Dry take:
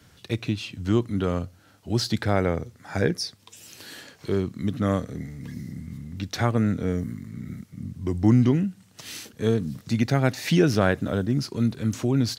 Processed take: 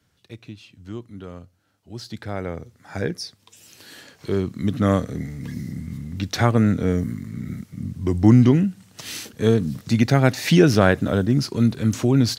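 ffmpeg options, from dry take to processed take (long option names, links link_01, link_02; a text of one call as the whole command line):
ffmpeg -i in.wav -af "volume=5dB,afade=type=in:start_time=1.93:duration=0.99:silence=0.334965,afade=type=in:start_time=3.85:duration=1.02:silence=0.421697" out.wav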